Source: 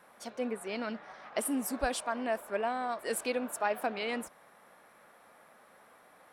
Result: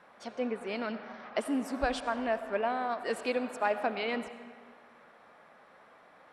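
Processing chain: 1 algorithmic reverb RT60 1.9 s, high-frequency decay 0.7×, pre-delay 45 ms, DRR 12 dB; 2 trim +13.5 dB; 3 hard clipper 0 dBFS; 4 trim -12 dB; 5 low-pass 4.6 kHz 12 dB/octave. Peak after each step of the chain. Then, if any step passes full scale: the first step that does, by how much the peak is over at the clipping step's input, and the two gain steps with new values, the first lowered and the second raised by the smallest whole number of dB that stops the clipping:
-18.0 dBFS, -4.5 dBFS, -4.5 dBFS, -16.5 dBFS, -17.0 dBFS; nothing clips

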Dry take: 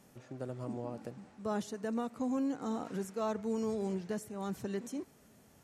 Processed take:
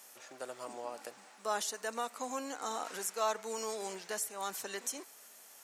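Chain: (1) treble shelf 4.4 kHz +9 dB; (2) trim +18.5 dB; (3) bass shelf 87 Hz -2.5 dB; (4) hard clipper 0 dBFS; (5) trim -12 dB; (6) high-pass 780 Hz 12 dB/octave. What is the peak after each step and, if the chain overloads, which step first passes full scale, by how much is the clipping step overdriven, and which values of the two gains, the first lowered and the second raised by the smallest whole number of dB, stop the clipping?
-23.0 dBFS, -4.5 dBFS, -4.5 dBFS, -4.5 dBFS, -16.5 dBFS, -20.0 dBFS; nothing clips

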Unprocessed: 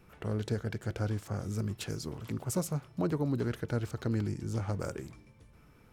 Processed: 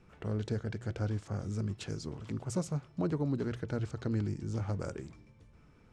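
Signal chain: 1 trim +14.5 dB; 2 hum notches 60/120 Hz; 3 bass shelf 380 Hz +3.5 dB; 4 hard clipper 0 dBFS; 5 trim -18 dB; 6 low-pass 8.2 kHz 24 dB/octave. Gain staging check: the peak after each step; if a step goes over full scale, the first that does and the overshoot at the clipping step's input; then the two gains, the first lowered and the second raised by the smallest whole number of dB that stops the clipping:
-6.0 dBFS, -5.5 dBFS, -4.0 dBFS, -4.0 dBFS, -22.0 dBFS, -22.0 dBFS; nothing clips

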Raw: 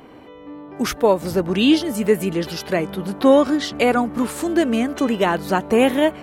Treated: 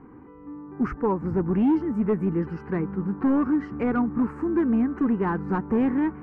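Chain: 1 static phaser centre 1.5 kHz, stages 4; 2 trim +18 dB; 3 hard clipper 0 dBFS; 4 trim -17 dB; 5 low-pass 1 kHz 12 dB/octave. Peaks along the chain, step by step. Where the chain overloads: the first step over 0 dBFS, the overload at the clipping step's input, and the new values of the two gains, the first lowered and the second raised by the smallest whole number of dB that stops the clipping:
-8.0 dBFS, +10.0 dBFS, 0.0 dBFS, -17.0 dBFS, -16.5 dBFS; step 2, 10.0 dB; step 2 +8 dB, step 4 -7 dB

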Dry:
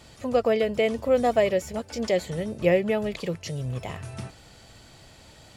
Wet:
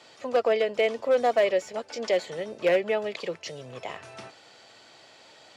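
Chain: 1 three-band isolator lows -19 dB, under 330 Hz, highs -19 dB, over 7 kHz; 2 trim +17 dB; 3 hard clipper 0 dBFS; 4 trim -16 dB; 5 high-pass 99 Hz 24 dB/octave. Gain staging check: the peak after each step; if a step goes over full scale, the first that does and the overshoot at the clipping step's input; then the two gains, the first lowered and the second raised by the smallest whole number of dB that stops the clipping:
-11.0 dBFS, +6.0 dBFS, 0.0 dBFS, -16.0 dBFS, -12.5 dBFS; step 2, 6.0 dB; step 2 +11 dB, step 4 -10 dB

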